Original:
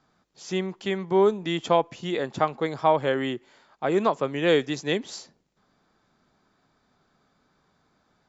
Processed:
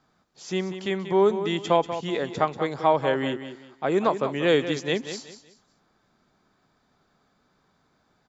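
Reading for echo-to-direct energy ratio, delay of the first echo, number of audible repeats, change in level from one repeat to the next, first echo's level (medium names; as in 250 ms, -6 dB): -10.0 dB, 187 ms, 3, -11.0 dB, -10.5 dB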